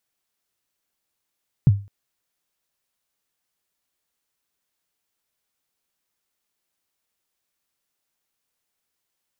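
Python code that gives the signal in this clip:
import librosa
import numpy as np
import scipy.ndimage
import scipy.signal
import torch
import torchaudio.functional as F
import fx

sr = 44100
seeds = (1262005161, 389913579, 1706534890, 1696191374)

y = fx.drum_kick(sr, seeds[0], length_s=0.21, level_db=-6.5, start_hz=160.0, end_hz=100.0, sweep_ms=32.0, decay_s=0.32, click=False)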